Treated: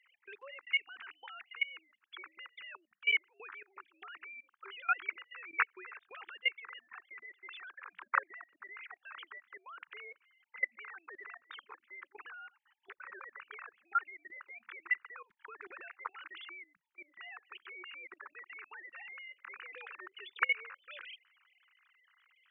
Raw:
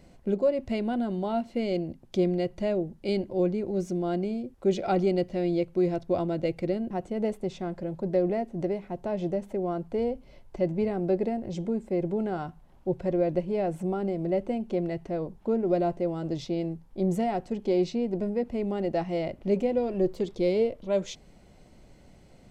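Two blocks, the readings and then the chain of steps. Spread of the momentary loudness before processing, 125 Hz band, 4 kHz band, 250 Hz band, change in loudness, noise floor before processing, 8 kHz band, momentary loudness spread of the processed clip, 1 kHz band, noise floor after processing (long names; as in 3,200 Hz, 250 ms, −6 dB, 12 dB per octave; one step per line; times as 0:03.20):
6 LU, below −40 dB, +1.0 dB, below −40 dB, −11.0 dB, −55 dBFS, can't be measured, 17 LU, −7.0 dB, −81 dBFS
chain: three sine waves on the formant tracks
inverse Chebyshev high-pass filter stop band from 690 Hz, stop band 40 dB
output level in coarse steps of 22 dB
level +17.5 dB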